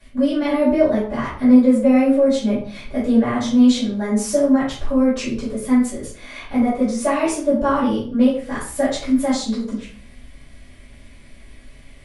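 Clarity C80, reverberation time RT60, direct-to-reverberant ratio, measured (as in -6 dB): 9.0 dB, 0.50 s, -10.5 dB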